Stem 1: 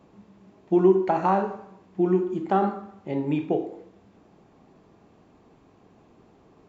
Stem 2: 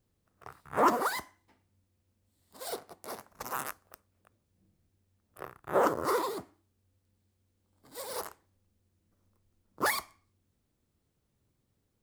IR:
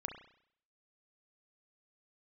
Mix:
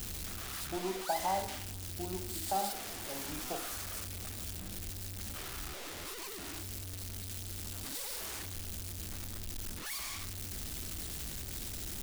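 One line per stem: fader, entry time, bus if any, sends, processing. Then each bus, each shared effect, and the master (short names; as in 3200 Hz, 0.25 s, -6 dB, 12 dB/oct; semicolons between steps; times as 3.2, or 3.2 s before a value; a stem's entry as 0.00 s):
-11.0 dB, 0.00 s, no send, band shelf 710 Hz +12.5 dB 1.1 oct
+0.5 dB, 0.00 s, no send, infinite clipping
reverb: off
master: ten-band EQ 125 Hz -11 dB, 250 Hz -5 dB, 500 Hz -10 dB, 1000 Hz -9 dB, 2000 Hz -3 dB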